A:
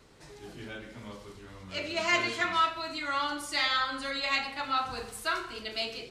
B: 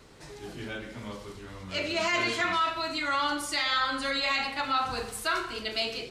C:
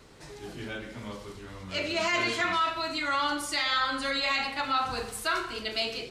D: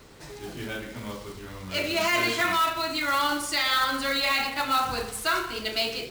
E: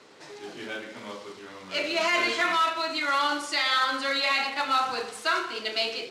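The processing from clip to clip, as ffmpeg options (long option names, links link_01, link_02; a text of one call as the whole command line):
ffmpeg -i in.wav -af "alimiter=limit=-22.5dB:level=0:latency=1:release=39,volume=4.5dB" out.wav
ffmpeg -i in.wav -af anull out.wav
ffmpeg -i in.wav -af "acrusher=bits=3:mode=log:mix=0:aa=0.000001,volume=3dB" out.wav
ffmpeg -i in.wav -af "highpass=300,lowpass=6400" out.wav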